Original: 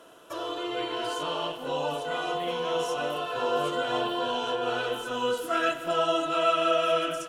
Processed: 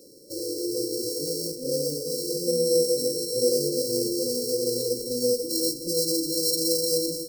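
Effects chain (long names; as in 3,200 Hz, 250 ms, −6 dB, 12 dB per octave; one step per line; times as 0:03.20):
samples sorted by size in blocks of 16 samples
0:02.47–0:03.50: EQ curve with evenly spaced ripples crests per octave 2, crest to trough 8 dB
brick-wall band-stop 580–4,000 Hz
level +5.5 dB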